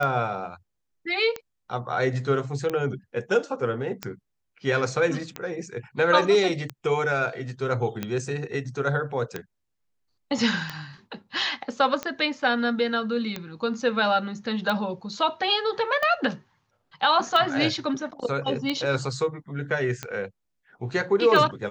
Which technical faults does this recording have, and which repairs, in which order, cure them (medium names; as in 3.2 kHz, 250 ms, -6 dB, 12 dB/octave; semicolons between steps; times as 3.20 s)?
tick 45 rpm -14 dBFS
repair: de-click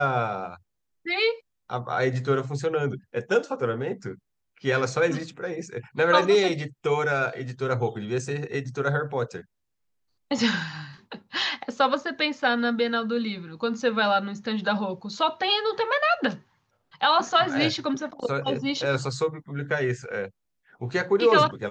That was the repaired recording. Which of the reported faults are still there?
nothing left